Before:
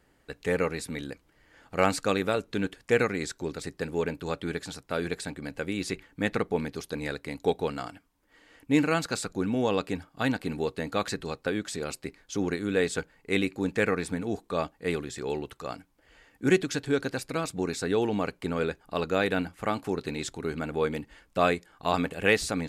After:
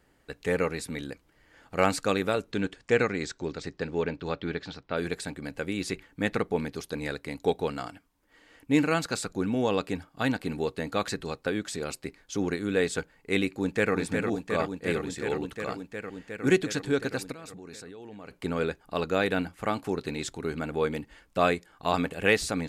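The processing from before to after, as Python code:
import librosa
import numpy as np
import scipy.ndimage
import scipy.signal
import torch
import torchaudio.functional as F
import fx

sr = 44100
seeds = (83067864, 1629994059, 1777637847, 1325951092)

y = fx.lowpass(x, sr, hz=fx.line((2.51, 9200.0), (4.96, 4300.0)), slope=24, at=(2.51, 4.96), fade=0.02)
y = fx.echo_throw(y, sr, start_s=13.51, length_s=0.42, ms=360, feedback_pct=85, wet_db=-5.0)
y = fx.level_steps(y, sr, step_db=22, at=(17.32, 18.31))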